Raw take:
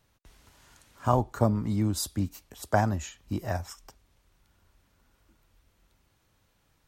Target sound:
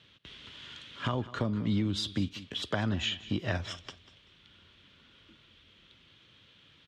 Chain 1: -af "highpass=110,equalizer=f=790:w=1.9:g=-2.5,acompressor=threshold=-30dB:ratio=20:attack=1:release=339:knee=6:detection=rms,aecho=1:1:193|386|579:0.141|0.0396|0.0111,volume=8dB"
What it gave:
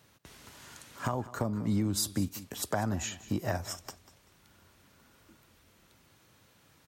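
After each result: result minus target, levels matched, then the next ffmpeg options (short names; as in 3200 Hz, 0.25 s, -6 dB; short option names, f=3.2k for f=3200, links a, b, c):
4000 Hz band -6.5 dB; 1000 Hz band +2.5 dB
-af "highpass=110,equalizer=f=790:w=1.9:g=-2.5,acompressor=threshold=-30dB:ratio=20:attack=1:release=339:knee=6:detection=rms,lowpass=f=3.3k:t=q:w=5,aecho=1:1:193|386|579:0.141|0.0396|0.0111,volume=8dB"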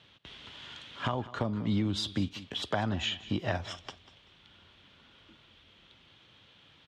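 1000 Hz band +3.5 dB
-af "highpass=110,equalizer=f=790:w=1.9:g=-11,acompressor=threshold=-30dB:ratio=20:attack=1:release=339:knee=6:detection=rms,lowpass=f=3.3k:t=q:w=5,aecho=1:1:193|386|579:0.141|0.0396|0.0111,volume=8dB"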